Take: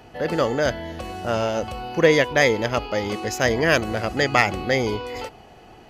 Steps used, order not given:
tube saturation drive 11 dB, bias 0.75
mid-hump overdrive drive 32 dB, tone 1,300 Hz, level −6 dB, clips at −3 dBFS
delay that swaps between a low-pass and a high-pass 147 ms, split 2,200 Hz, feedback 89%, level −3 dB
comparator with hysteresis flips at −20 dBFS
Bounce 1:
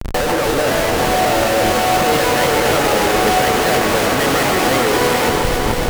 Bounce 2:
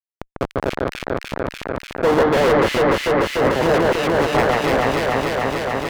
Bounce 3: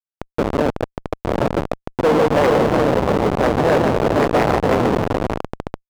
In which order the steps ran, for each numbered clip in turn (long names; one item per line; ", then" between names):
mid-hump overdrive, then comparator with hysteresis, then tube saturation, then delay that swaps between a low-pass and a high-pass
tube saturation, then comparator with hysteresis, then delay that swaps between a low-pass and a high-pass, then mid-hump overdrive
tube saturation, then delay that swaps between a low-pass and a high-pass, then comparator with hysteresis, then mid-hump overdrive